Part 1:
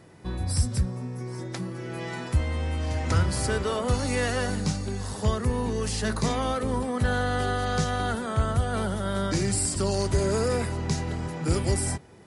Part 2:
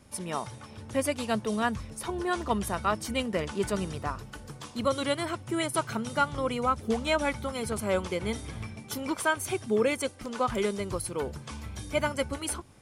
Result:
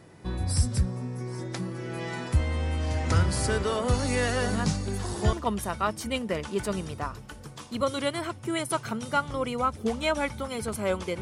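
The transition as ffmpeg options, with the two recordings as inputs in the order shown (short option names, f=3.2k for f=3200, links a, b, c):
-filter_complex "[1:a]asplit=2[a][b];[0:a]apad=whole_dur=11.21,atrim=end=11.21,atrim=end=5.332[c];[b]atrim=start=2.368:end=8.25[d];[a]atrim=start=1.44:end=2.37,asetpts=PTS-STARTPTS,volume=-6.5dB,afade=t=in:d=0.004:c=hsin,afade=t=out:st=0.926:d=0.004:c=hsin,adelay=4400[e];[c][d]acrossfade=d=0.004:c1=hsin:c2=hsin[f];[f][e]amix=inputs=2:normalize=0"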